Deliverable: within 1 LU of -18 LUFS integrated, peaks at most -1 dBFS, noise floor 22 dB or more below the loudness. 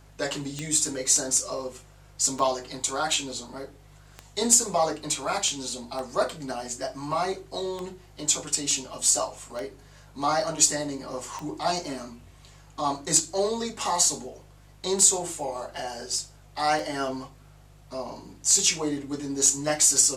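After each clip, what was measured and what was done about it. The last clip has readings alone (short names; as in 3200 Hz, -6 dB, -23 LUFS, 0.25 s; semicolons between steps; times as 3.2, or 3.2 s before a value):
clicks 11; hum 50 Hz; harmonics up to 150 Hz; hum level -50 dBFS; loudness -25.0 LUFS; peak -5.0 dBFS; loudness target -18.0 LUFS
-> de-click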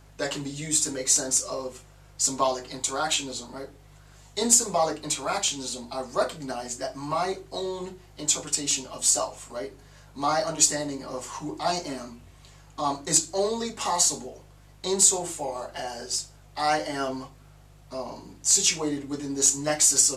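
clicks 0; hum 50 Hz; harmonics up to 150 Hz; hum level -50 dBFS
-> de-hum 50 Hz, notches 3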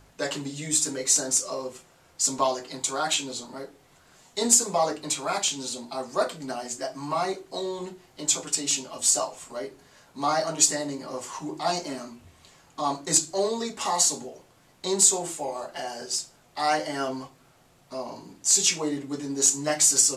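hum none; loudness -25.0 LUFS; peak -5.0 dBFS; loudness target -18.0 LUFS
-> gain +7 dB; limiter -1 dBFS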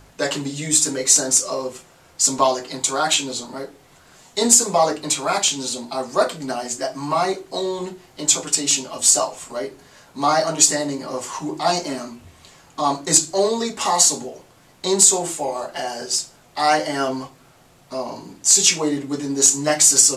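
loudness -18.5 LUFS; peak -1.0 dBFS; noise floor -52 dBFS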